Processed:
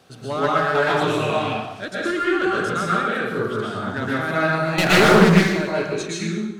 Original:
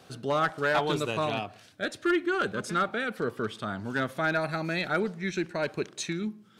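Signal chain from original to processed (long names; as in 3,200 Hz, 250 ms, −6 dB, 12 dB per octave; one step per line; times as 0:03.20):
0:04.78–0:05.30: leveller curve on the samples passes 5
dense smooth reverb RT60 1 s, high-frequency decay 0.8×, pre-delay 105 ms, DRR −6.5 dB
highs frequency-modulated by the lows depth 0.4 ms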